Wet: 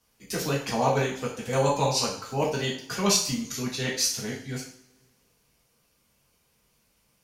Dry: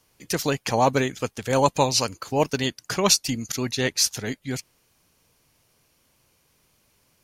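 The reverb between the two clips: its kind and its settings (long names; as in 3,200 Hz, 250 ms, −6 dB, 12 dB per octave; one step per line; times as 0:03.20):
coupled-rooms reverb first 0.49 s, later 2 s, from −25 dB, DRR −5 dB
level −9.5 dB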